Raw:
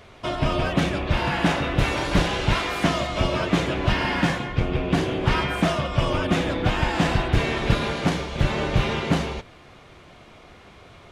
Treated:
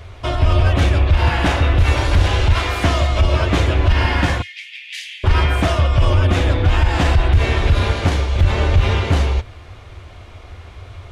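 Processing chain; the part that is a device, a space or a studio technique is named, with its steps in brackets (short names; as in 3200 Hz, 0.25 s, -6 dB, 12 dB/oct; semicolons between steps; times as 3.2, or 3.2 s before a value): 4.42–5.24 steep high-pass 1900 Hz 72 dB/oct; car stereo with a boomy subwoofer (resonant low shelf 120 Hz +9.5 dB, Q 3; limiter -9.5 dBFS, peak gain reduction 11.5 dB); gain +4.5 dB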